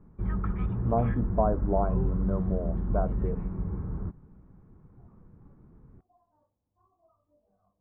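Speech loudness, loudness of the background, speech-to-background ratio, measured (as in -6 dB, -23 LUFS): -31.5 LUFS, -32.0 LUFS, 0.5 dB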